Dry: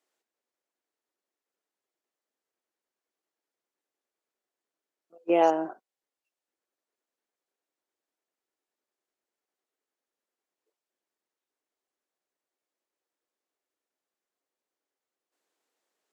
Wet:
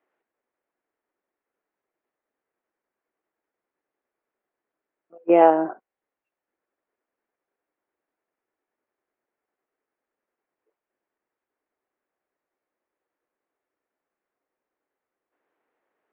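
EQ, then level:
low-pass filter 2,200 Hz 24 dB per octave
+7.0 dB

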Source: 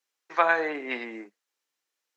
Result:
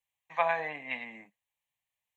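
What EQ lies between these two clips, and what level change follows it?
parametric band 100 Hz +4 dB 0.45 octaves
low shelf with overshoot 190 Hz +10 dB, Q 1.5
phaser with its sweep stopped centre 1,400 Hz, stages 6
−2.0 dB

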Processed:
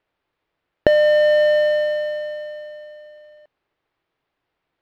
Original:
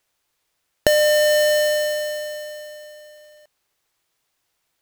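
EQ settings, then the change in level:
high-frequency loss of the air 380 metres
parametric band 330 Hz +4 dB 1.4 octaves
+2.0 dB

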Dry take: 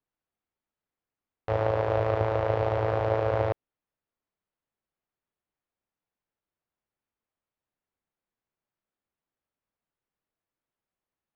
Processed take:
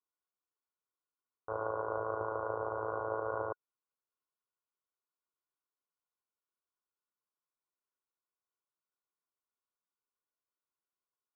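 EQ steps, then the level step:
Chebyshev low-pass with heavy ripple 1,500 Hz, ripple 9 dB
tilt shelving filter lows −6.5 dB, about 870 Hz
low-shelf EQ 450 Hz −7 dB
0.0 dB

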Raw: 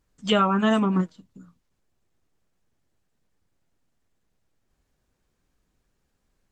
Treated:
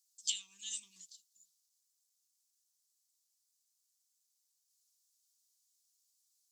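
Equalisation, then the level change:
inverse Chebyshev high-pass filter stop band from 1,500 Hz, stop band 60 dB
+8.0 dB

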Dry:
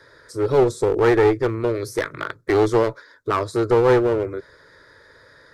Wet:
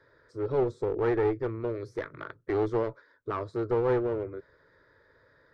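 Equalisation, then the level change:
head-to-tape spacing loss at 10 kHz 25 dB
−9.0 dB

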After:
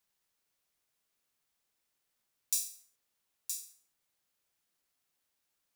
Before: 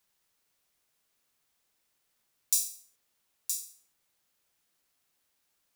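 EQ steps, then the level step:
dynamic equaliser 1,700 Hz, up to +6 dB, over −58 dBFS, Q 0.76
−5.5 dB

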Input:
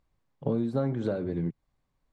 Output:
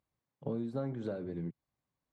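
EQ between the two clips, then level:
high-pass filter 89 Hz
−8.0 dB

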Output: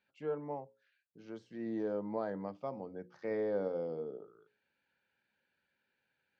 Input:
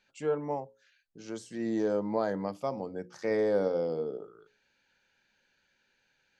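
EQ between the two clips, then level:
high-pass filter 75 Hz
high-frequency loss of the air 250 metres
−6.5 dB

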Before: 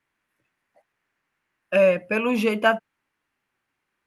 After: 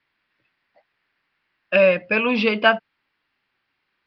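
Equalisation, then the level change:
Butterworth low-pass 5,000 Hz 72 dB per octave
high-shelf EQ 2,300 Hz +10.5 dB
+1.0 dB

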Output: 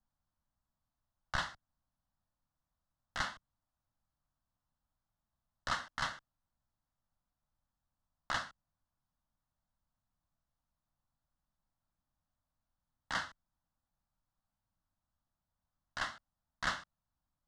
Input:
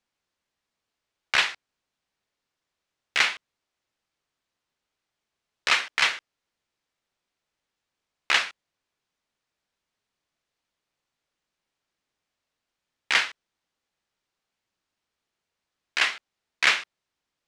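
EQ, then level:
spectral tilt −3.5 dB per octave
dynamic equaliser 860 Hz, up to −5 dB, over −43 dBFS, Q 1.7
phaser with its sweep stopped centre 1,000 Hz, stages 4
−4.0 dB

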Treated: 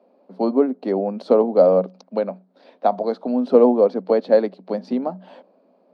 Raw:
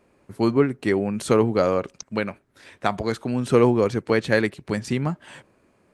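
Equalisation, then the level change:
Chebyshev high-pass with heavy ripple 180 Hz, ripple 9 dB
dynamic equaliser 2,800 Hz, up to −5 dB, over −51 dBFS, Q 1.5
drawn EQ curve 340 Hz 0 dB, 510 Hz +7 dB, 1,900 Hz −12 dB, 4,500 Hz −1 dB, 7,500 Hz −28 dB
+6.0 dB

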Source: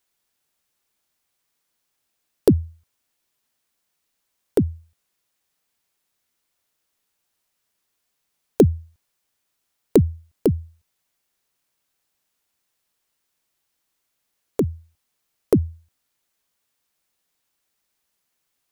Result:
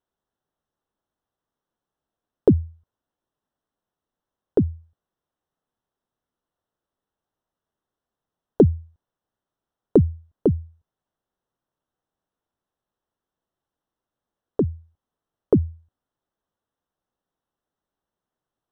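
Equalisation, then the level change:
moving average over 19 samples
0.0 dB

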